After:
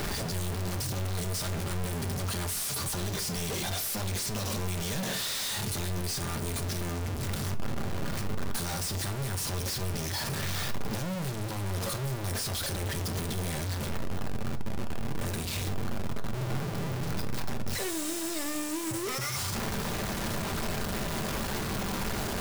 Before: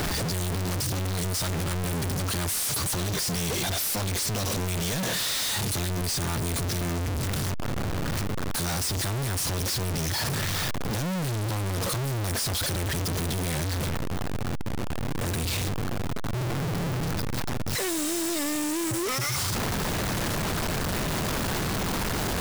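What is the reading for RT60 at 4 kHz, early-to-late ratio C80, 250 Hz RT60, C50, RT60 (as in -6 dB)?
0.30 s, 20.0 dB, 0.50 s, 15.0 dB, 0.45 s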